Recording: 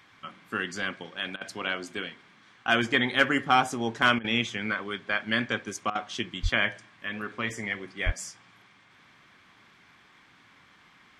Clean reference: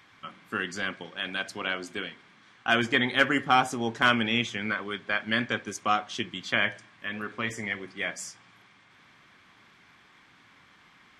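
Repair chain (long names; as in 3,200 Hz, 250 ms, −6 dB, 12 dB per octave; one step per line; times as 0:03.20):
0:06.42–0:06.54: high-pass filter 140 Hz 24 dB per octave
0:08.05–0:08.17: high-pass filter 140 Hz 24 dB per octave
repair the gap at 0:01.36/0:04.19/0:05.90, 51 ms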